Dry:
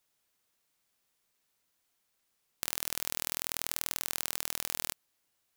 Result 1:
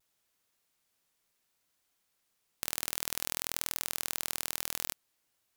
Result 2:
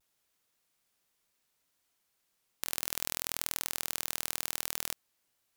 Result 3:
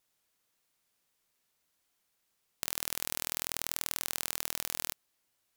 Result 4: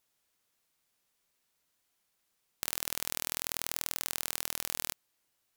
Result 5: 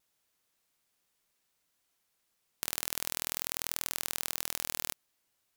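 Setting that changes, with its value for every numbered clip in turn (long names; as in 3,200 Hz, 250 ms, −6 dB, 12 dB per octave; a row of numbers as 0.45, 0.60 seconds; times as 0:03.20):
pitch vibrato, speed: 0.66, 0.41, 3.8, 5.9, 1.4 Hertz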